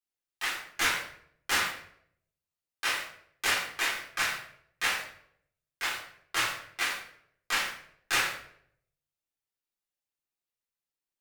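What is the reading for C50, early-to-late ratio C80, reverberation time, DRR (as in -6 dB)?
4.5 dB, 8.0 dB, 0.65 s, -6.0 dB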